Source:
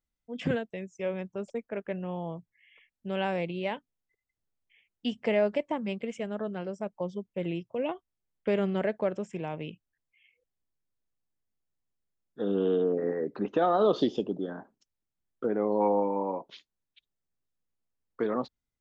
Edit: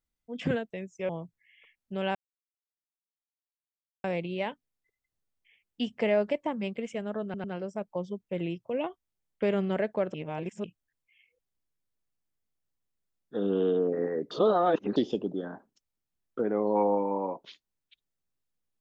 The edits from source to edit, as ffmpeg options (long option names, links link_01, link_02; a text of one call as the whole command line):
ffmpeg -i in.wav -filter_complex "[0:a]asplit=9[link_01][link_02][link_03][link_04][link_05][link_06][link_07][link_08][link_09];[link_01]atrim=end=1.092[link_10];[link_02]atrim=start=2.228:end=3.29,asetpts=PTS-STARTPTS,afade=type=out:start_time=1.058:duration=0.004:curve=hsin,apad=pad_dur=1.89[link_11];[link_03]atrim=start=3.29:end=6.592,asetpts=PTS-STARTPTS,afade=type=in:duration=0.004:curve=hsin[link_12];[link_04]atrim=start=6.488:end=6.592[link_13];[link_05]atrim=start=6.488:end=9.192[link_14];[link_06]atrim=start=9.188:end=9.692,asetpts=PTS-STARTPTS,areverse[link_15];[link_07]atrim=start=9.688:end=13.362[link_16];[link_08]atrim=start=13.358:end=14.012,asetpts=PTS-STARTPTS,areverse[link_17];[link_09]atrim=start=14.008[link_18];[link_11][link_12]concat=n=2:v=0:a=1[link_19];[link_10][link_19]acrossfade=duration=0.004:curve1=hsin:curve2=hsin[link_20];[link_20][link_13]acrossfade=duration=0.004:curve1=hsin:curve2=hsin[link_21];[link_21][link_14]acrossfade=duration=0.004:curve1=hsin:curve2=hsin[link_22];[link_22][link_15]acrossfade=duration=0.004:curve1=hsin:curve2=hsin[link_23];[link_23][link_16]acrossfade=duration=0.004:curve1=hsin:curve2=hsin[link_24];[link_24][link_17]acrossfade=duration=0.004:curve1=hsin:curve2=hsin[link_25];[link_25][link_18]acrossfade=duration=0.004:curve1=hsin:curve2=hsin" out.wav